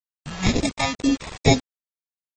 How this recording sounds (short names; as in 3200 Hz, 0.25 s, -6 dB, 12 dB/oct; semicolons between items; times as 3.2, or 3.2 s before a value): aliases and images of a low sample rate 1500 Hz, jitter 0%; phasing stages 2, 2.1 Hz, lowest notch 330–1300 Hz; a quantiser's noise floor 6-bit, dither none; AAC